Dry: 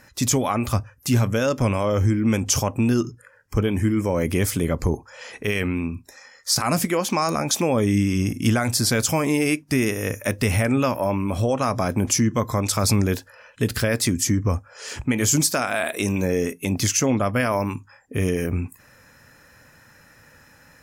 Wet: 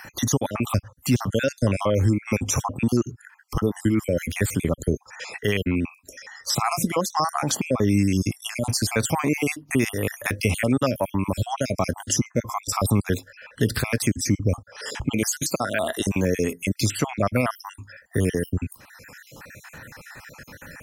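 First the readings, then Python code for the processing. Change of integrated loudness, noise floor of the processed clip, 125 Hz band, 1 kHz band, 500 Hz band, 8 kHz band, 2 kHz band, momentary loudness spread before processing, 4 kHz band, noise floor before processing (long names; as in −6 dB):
−2.0 dB, −55 dBFS, −2.0 dB, −1.5 dB, −2.0 dB, −4.0 dB, −1.5 dB, 7 LU, −3.0 dB, −53 dBFS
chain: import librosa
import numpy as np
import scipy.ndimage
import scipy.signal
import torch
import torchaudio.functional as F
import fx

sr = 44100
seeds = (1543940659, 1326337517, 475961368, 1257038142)

y = fx.spec_dropout(x, sr, seeds[0], share_pct=50)
y = fx.band_squash(y, sr, depth_pct=40)
y = y * 10.0 ** (1.0 / 20.0)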